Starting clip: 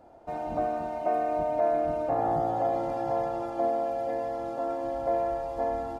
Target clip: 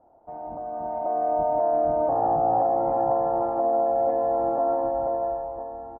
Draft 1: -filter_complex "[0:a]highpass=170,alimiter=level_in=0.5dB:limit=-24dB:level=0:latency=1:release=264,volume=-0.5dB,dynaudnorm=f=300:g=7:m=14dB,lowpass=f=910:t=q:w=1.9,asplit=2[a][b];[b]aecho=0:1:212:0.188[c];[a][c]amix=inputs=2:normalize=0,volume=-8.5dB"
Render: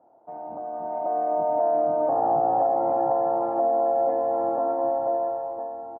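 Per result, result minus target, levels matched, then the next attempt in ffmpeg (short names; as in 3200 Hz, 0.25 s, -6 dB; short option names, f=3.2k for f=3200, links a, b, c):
echo 59 ms late; 125 Hz band -5.5 dB
-filter_complex "[0:a]highpass=170,alimiter=level_in=0.5dB:limit=-24dB:level=0:latency=1:release=264,volume=-0.5dB,dynaudnorm=f=300:g=7:m=14dB,lowpass=f=910:t=q:w=1.9,asplit=2[a][b];[b]aecho=0:1:153:0.188[c];[a][c]amix=inputs=2:normalize=0,volume=-8.5dB"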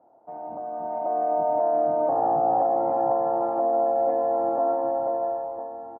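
125 Hz band -5.5 dB
-filter_complex "[0:a]alimiter=level_in=0.5dB:limit=-24dB:level=0:latency=1:release=264,volume=-0.5dB,dynaudnorm=f=300:g=7:m=14dB,lowpass=f=910:t=q:w=1.9,asplit=2[a][b];[b]aecho=0:1:153:0.188[c];[a][c]amix=inputs=2:normalize=0,volume=-8.5dB"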